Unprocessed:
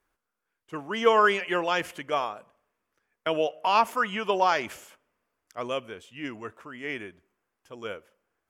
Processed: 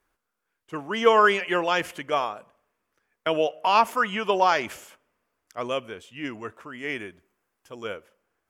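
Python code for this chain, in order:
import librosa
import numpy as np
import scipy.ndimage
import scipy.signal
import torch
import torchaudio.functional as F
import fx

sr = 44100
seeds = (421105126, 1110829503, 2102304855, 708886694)

y = fx.high_shelf(x, sr, hz=6500.0, db=5.0, at=(6.73, 7.83))
y = F.gain(torch.from_numpy(y), 2.5).numpy()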